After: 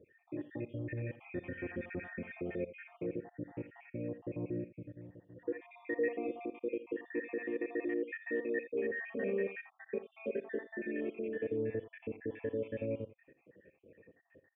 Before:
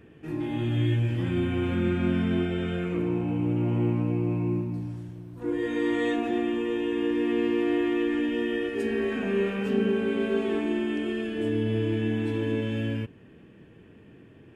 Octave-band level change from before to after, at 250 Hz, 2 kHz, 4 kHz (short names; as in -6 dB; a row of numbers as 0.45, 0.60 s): -15.5 dB, -8.0 dB, under -25 dB